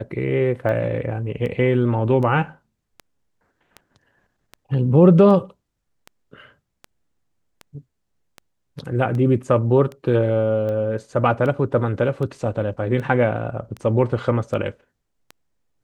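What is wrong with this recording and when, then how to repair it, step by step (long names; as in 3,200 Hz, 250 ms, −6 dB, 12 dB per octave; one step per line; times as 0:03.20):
scratch tick 78 rpm −20 dBFS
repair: click removal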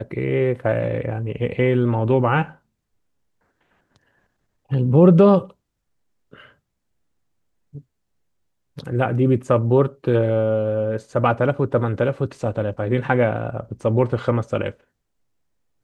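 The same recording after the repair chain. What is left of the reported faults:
none of them is left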